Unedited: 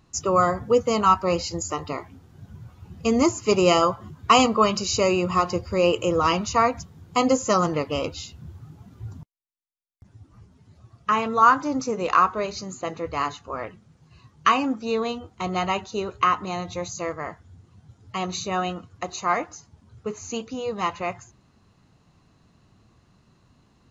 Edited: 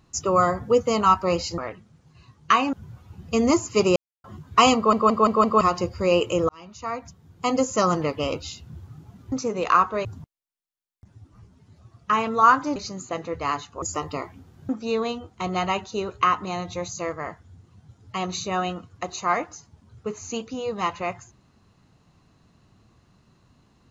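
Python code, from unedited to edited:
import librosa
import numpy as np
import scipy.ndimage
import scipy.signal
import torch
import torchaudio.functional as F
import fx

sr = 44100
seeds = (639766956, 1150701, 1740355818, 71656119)

y = fx.edit(x, sr, fx.swap(start_s=1.58, length_s=0.87, other_s=13.54, other_length_s=1.15),
    fx.silence(start_s=3.68, length_s=0.28),
    fx.stutter_over(start_s=4.48, slice_s=0.17, count=5),
    fx.fade_in_span(start_s=6.21, length_s=1.41),
    fx.move(start_s=11.75, length_s=0.73, to_s=9.04), tone=tone)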